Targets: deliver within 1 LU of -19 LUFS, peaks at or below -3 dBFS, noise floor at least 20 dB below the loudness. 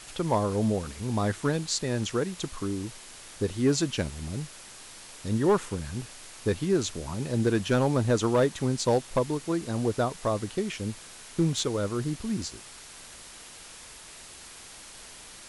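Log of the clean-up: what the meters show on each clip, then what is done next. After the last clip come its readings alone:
clipped 0.3%; flat tops at -16.0 dBFS; noise floor -47 dBFS; noise floor target -49 dBFS; loudness -28.5 LUFS; peak -16.0 dBFS; loudness target -19.0 LUFS
-> clip repair -16 dBFS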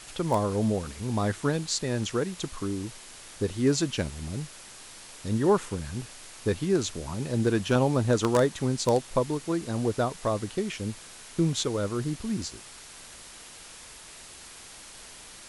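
clipped 0.0%; noise floor -47 dBFS; noise floor target -48 dBFS
-> denoiser 6 dB, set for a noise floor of -47 dBFS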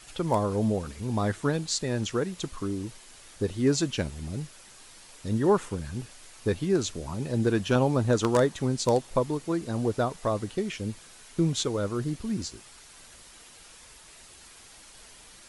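noise floor -51 dBFS; loudness -28.5 LUFS; peak -7.5 dBFS; loudness target -19.0 LUFS
-> gain +9.5 dB; limiter -3 dBFS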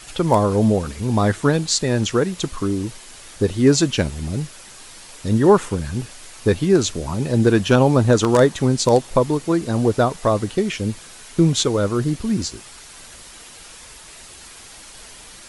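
loudness -19.0 LUFS; peak -3.0 dBFS; noise floor -42 dBFS

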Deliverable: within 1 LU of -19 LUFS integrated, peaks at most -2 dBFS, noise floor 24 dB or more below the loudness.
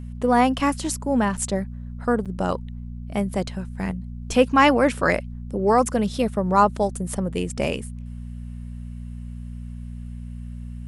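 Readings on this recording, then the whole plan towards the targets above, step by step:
dropouts 2; longest dropout 6.9 ms; hum 60 Hz; harmonics up to 240 Hz; hum level -31 dBFS; loudness -22.5 LUFS; peak -4.0 dBFS; loudness target -19.0 LUFS
-> interpolate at 1.37/2.25, 6.9 ms; de-hum 60 Hz, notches 4; gain +3.5 dB; limiter -2 dBFS

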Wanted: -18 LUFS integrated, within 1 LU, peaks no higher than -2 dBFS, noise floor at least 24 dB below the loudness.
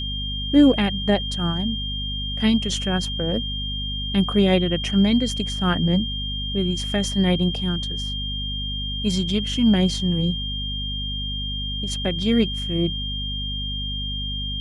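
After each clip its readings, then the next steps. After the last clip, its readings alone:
hum 50 Hz; harmonics up to 250 Hz; hum level -27 dBFS; steady tone 3200 Hz; tone level -28 dBFS; loudness -22.5 LUFS; peak -5.0 dBFS; loudness target -18.0 LUFS
-> notches 50/100/150/200/250 Hz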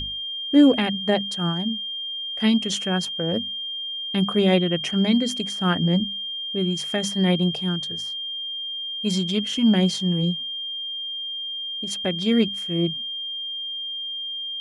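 hum none; steady tone 3200 Hz; tone level -28 dBFS
-> notch 3200 Hz, Q 30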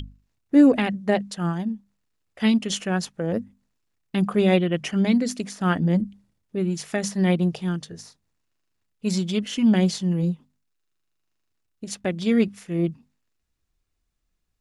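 steady tone none; loudness -23.5 LUFS; peak -6.5 dBFS; loudness target -18.0 LUFS
-> gain +5.5 dB; limiter -2 dBFS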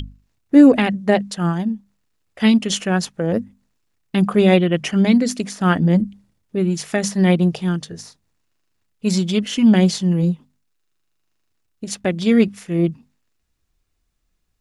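loudness -18.0 LUFS; peak -2.0 dBFS; noise floor -69 dBFS

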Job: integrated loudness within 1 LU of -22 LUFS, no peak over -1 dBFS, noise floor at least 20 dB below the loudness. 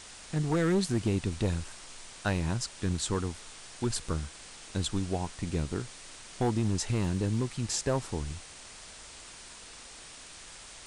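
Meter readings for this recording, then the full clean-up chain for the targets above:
clipped 0.8%; flat tops at -21.0 dBFS; noise floor -49 dBFS; noise floor target -52 dBFS; loudness -32.0 LUFS; peak -21.0 dBFS; loudness target -22.0 LUFS
-> clip repair -21 dBFS; noise print and reduce 6 dB; gain +10 dB

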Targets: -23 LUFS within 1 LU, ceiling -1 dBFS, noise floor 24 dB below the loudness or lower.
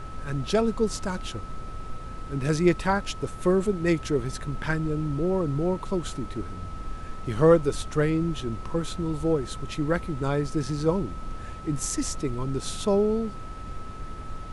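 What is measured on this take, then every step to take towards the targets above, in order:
steady tone 1300 Hz; tone level -42 dBFS; noise floor -38 dBFS; noise floor target -51 dBFS; loudness -27.0 LUFS; peak -7.5 dBFS; loudness target -23.0 LUFS
-> notch 1300 Hz, Q 30; noise print and reduce 13 dB; gain +4 dB

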